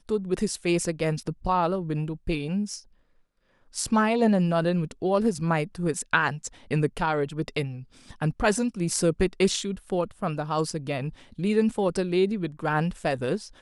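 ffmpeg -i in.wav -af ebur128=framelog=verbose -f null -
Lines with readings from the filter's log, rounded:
Integrated loudness:
  I:         -26.4 LUFS
  Threshold: -36.7 LUFS
Loudness range:
  LRA:         3.3 LU
  Threshold: -46.7 LUFS
  LRA low:   -28.2 LUFS
  LRA high:  -25.0 LUFS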